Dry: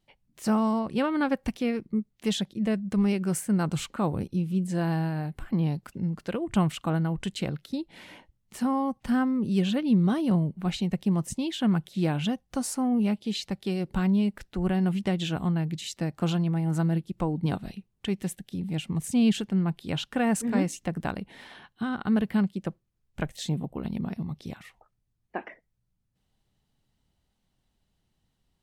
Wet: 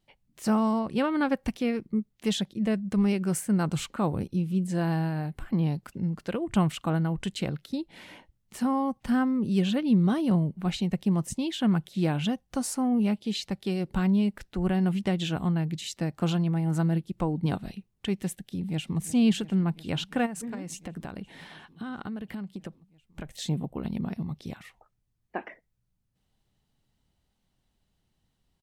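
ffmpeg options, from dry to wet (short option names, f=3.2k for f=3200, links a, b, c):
-filter_complex "[0:a]asplit=2[a][b];[b]afade=t=in:st=18.38:d=0.01,afade=t=out:st=18.99:d=0.01,aecho=0:1:350|700|1050|1400|1750|2100|2450|2800|3150|3500|3850|4200:0.149624|0.12718|0.108103|0.0918876|0.0781044|0.0663888|0.0564305|0.0479659|0.040771|0.0346554|0.0294571|0.0250385[c];[a][c]amix=inputs=2:normalize=0,asplit=3[d][e][f];[d]afade=t=out:st=20.25:d=0.02[g];[e]acompressor=threshold=-32dB:ratio=12:attack=3.2:release=140:knee=1:detection=peak,afade=t=in:st=20.25:d=0.02,afade=t=out:st=23.41:d=0.02[h];[f]afade=t=in:st=23.41:d=0.02[i];[g][h][i]amix=inputs=3:normalize=0"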